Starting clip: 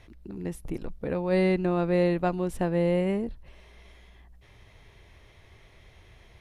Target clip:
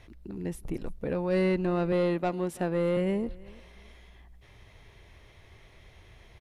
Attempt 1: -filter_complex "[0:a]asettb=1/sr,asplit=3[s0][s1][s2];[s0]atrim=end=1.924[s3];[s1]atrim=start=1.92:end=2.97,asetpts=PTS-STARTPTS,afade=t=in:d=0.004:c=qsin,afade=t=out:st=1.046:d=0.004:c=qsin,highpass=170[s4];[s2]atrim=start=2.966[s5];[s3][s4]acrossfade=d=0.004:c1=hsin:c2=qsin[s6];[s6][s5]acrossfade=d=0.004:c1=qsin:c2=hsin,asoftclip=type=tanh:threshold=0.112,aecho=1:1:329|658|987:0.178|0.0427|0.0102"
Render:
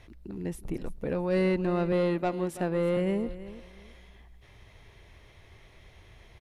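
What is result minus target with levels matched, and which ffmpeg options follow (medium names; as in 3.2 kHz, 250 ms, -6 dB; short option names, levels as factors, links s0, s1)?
echo-to-direct +7.5 dB
-filter_complex "[0:a]asettb=1/sr,asplit=3[s0][s1][s2];[s0]atrim=end=1.924[s3];[s1]atrim=start=1.92:end=2.97,asetpts=PTS-STARTPTS,afade=t=in:d=0.004:c=qsin,afade=t=out:st=1.046:d=0.004:c=qsin,highpass=170[s4];[s2]atrim=start=2.966[s5];[s3][s4]acrossfade=d=0.004:c1=hsin:c2=qsin[s6];[s6][s5]acrossfade=d=0.004:c1=qsin:c2=hsin,asoftclip=type=tanh:threshold=0.112,aecho=1:1:329|658:0.075|0.018"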